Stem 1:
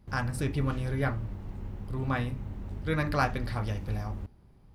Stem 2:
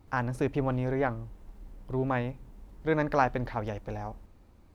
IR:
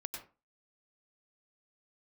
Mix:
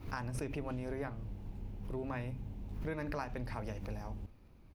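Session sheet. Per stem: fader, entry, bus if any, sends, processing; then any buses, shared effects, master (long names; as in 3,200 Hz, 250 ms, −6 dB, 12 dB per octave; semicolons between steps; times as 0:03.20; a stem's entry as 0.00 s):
−7.0 dB, 0.00 s, no send, flat-topped bell 1,400 Hz −9 dB 1.1 octaves
−4.5 dB, 0.3 ms, no send, thirty-one-band graphic EQ 800 Hz −5 dB, 2,500 Hz +6 dB, 8,000 Hz −11 dB; background raised ahead of every attack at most 120 dB per second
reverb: not used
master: downward compressor 6 to 1, threshold −35 dBFS, peak gain reduction 9.5 dB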